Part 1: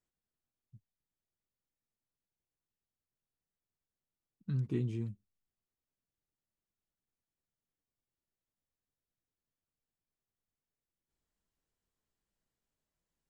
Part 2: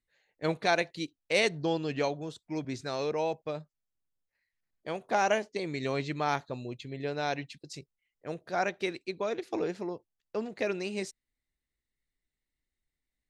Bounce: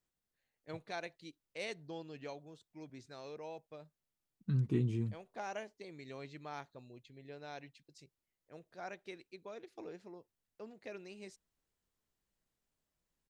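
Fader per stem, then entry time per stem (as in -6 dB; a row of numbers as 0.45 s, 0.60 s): +1.5 dB, -16.0 dB; 0.00 s, 0.25 s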